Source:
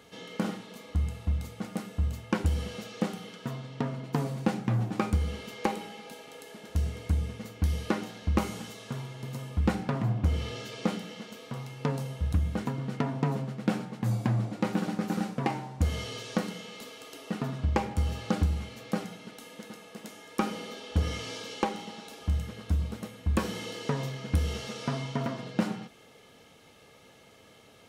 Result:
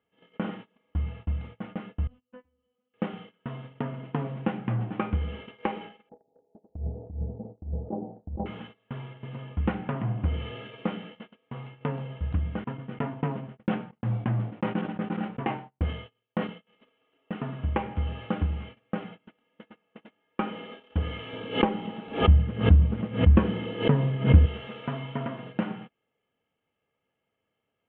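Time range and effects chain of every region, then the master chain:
0:02.07–0:02.94: high-shelf EQ 2,400 Hz −6 dB + tuned comb filter 250 Hz, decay 0.34 s, mix 100%
0:06.09–0:08.46: Chebyshev low-pass filter 810 Hz, order 5 + compressor whose output falls as the input rises −29 dBFS, ratio −0.5
0:12.64–0:16.67: downward expander −30 dBFS + double-tracking delay 18 ms −13 dB + level that may fall only so fast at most 120 dB per second
0:21.33–0:24.46: low-shelf EQ 480 Hz +11.5 dB + background raised ahead of every attack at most 140 dB per second
whole clip: elliptic low-pass filter 3,100 Hz, stop band 40 dB; noise gate −42 dBFS, range −24 dB

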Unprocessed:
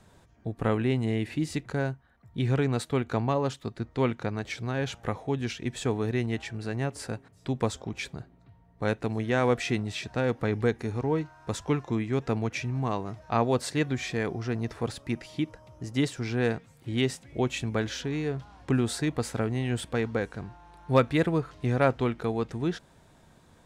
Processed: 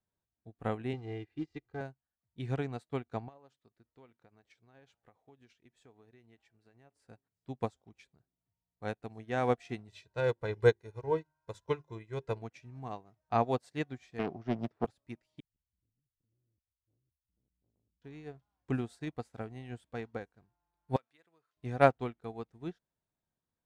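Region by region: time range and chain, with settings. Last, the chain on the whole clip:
0:00.93–0:01.81: comb filter 2.5 ms, depth 72% + log-companded quantiser 6 bits + high-frequency loss of the air 170 metres
0:03.28–0:07.02: bass and treble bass −5 dB, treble −2 dB + downward compressor 5 to 1, threshold −31 dBFS
0:09.88–0:12.42: mains-hum notches 50/100/150/200/250/300/350/400 Hz + comb filter 2 ms, depth 73% + dynamic equaliser 3,900 Hz, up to +5 dB, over −56 dBFS, Q 7.4
0:14.19–0:14.85: band-pass filter 190–4,500 Hz + low-shelf EQ 370 Hz +12 dB + highs frequency-modulated by the lows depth 0.42 ms
0:15.40–0:18.02: inverse Chebyshev band-stop filter 200–6,600 Hz, stop band 50 dB + spectral tilt −1.5 dB per octave + saturating transformer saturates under 430 Hz
0:20.96–0:21.57: high-pass filter 1,300 Hz 6 dB per octave + downward compressor 2.5 to 1, threshold −35 dBFS
whole clip: dynamic equaliser 740 Hz, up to +7 dB, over −48 dBFS, Q 4.8; expander for the loud parts 2.5 to 1, over −40 dBFS

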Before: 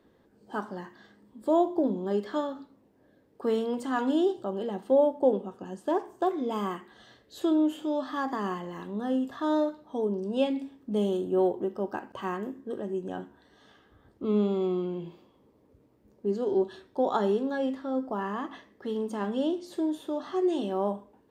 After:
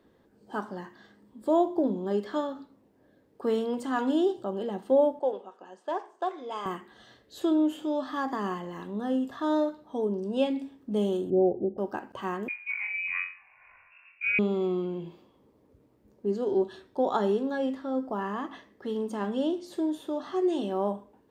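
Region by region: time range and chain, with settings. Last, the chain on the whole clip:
0:05.19–0:06.66: band-pass filter 610–6,800 Hz + one half of a high-frequency compander decoder only
0:11.30–0:11.78: Butterworth low-pass 780 Hz 72 dB per octave + low-shelf EQ 180 Hz +7.5 dB + one half of a high-frequency compander decoder only
0:12.48–0:14.39: flutter between parallel walls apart 3.8 metres, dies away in 0.35 s + voice inversion scrambler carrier 2,700 Hz
whole clip: no processing

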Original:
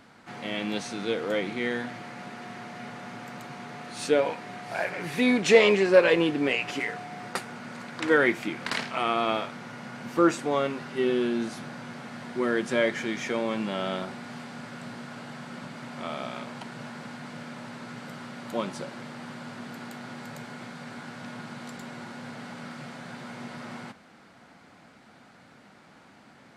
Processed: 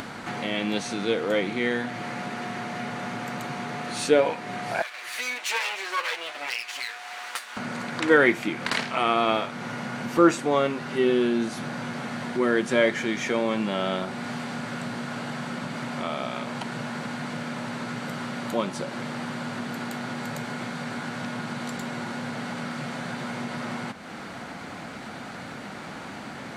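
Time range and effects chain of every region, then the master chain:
0:04.82–0:07.57: lower of the sound and its delayed copy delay 8.1 ms + high-pass filter 1,200 Hz + flanger 1.3 Hz, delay 5.1 ms, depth 9.9 ms, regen +85%
whole clip: notch filter 5,100 Hz, Q 25; upward compression, threshold −29 dBFS; level +3.5 dB

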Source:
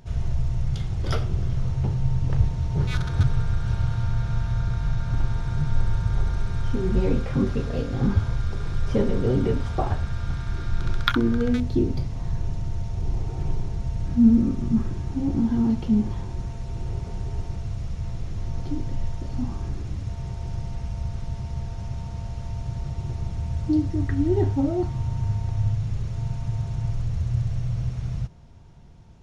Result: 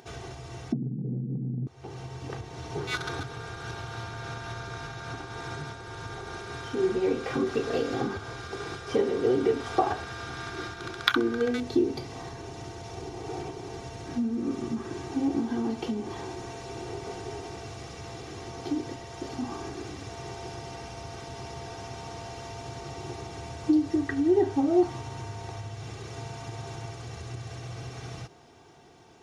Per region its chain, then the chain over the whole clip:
0:00.72–0:01.67: inverse Chebyshev low-pass filter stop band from 1,100 Hz, stop band 60 dB + spectral tilt −4.5 dB per octave + frequency shifter +110 Hz
whole clip: downward compressor, threshold −23 dBFS; high-pass filter 290 Hz 12 dB per octave; comb filter 2.6 ms, depth 55%; level +5.5 dB

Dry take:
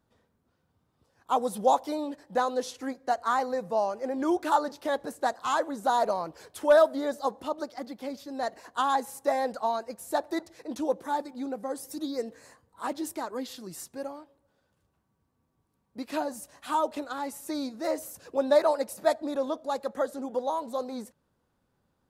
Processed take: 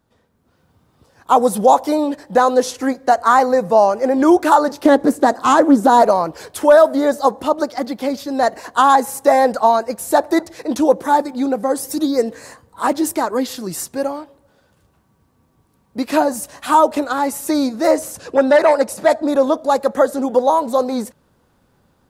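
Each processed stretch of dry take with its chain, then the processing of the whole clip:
0:04.83–0:06.02: parametric band 280 Hz +11 dB 0.97 octaves + highs frequency-modulated by the lows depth 0.14 ms
0:17.96–0:19.28: low-pass filter 9,900 Hz + saturating transformer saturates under 1,100 Hz
whole clip: dynamic equaliser 3,500 Hz, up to −5 dB, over −50 dBFS, Q 1.4; automatic gain control gain up to 8.5 dB; boost into a limiter +8 dB; level −1 dB

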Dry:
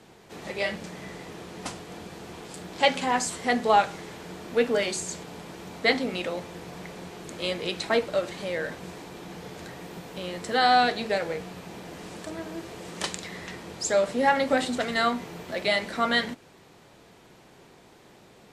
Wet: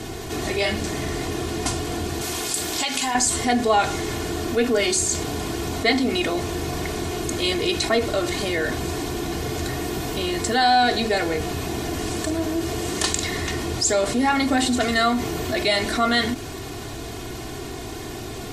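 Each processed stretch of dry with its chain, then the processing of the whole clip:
0:02.21–0:03.15: spectral tilt +2.5 dB per octave + downward compressor 4 to 1, threshold −31 dBFS
whole clip: bass and treble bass +11 dB, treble +6 dB; comb filter 2.8 ms, depth 79%; envelope flattener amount 50%; level −2.5 dB

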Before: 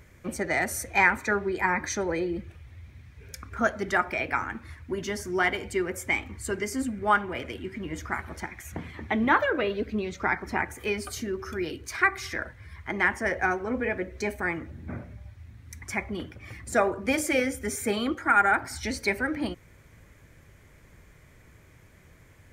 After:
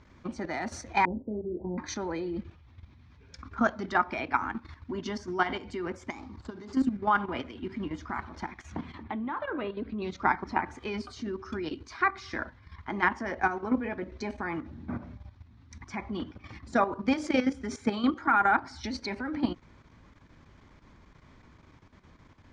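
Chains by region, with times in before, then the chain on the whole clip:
0:01.05–0:01.78: Butterworth low-pass 590 Hz 48 dB per octave + double-tracking delay 28 ms −5 dB
0:06.10–0:06.73: running median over 15 samples + high-pass filter 60 Hz + downward compressor 4 to 1, threshold −34 dBFS
0:09.03–0:10.02: low-pass filter 2,900 Hz + downward compressor 2.5 to 1, threshold −32 dBFS
whole clip: octave-band graphic EQ 125/250/500/1,000/2,000/4,000 Hz −3/+8/−5/+9/−6/+4 dB; output level in coarse steps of 11 dB; low-pass filter 5,500 Hz 24 dB per octave

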